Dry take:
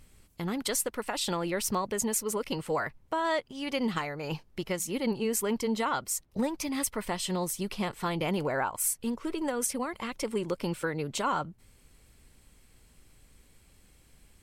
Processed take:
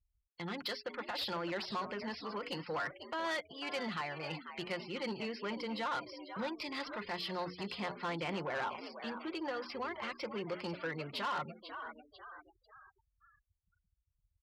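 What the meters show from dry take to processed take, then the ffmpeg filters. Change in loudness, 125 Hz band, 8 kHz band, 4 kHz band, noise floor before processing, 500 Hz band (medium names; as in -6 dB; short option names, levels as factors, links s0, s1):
-8.5 dB, -10.0 dB, -27.5 dB, -4.0 dB, -61 dBFS, -8.5 dB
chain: -filter_complex "[0:a]acrossover=split=170[s0][s1];[s0]alimiter=level_in=7.08:limit=0.0631:level=0:latency=1,volume=0.141[s2];[s2][s1]amix=inputs=2:normalize=0,tiltshelf=f=920:g=-5.5,bandreject=f=60:t=h:w=6,bandreject=f=120:t=h:w=6,bandreject=f=180:t=h:w=6,bandreject=f=240:t=h:w=6,bandreject=f=300:t=h:w=6,bandreject=f=360:t=h:w=6,bandreject=f=420:t=h:w=6,aecho=1:1:5.7:0.43,aresample=11025,volume=14.1,asoftclip=hard,volume=0.0708,aresample=44100,adynamicequalizer=threshold=0.00316:dfrequency=3500:dqfactor=1.4:tfrequency=3500:tqfactor=1.4:attack=5:release=100:ratio=0.375:range=3:mode=cutabove:tftype=bell,asplit=6[s3][s4][s5][s6][s7][s8];[s4]adelay=494,afreqshift=75,volume=0.251[s9];[s5]adelay=988,afreqshift=150,volume=0.116[s10];[s6]adelay=1482,afreqshift=225,volume=0.0531[s11];[s7]adelay=1976,afreqshift=300,volume=0.0245[s12];[s8]adelay=2470,afreqshift=375,volume=0.0112[s13];[s3][s9][s10][s11][s12][s13]amix=inputs=6:normalize=0,afftfilt=real='re*gte(hypot(re,im),0.00501)':imag='im*gte(hypot(re,im),0.00501)':win_size=1024:overlap=0.75,asoftclip=type=tanh:threshold=0.0398,highpass=67,volume=0.668"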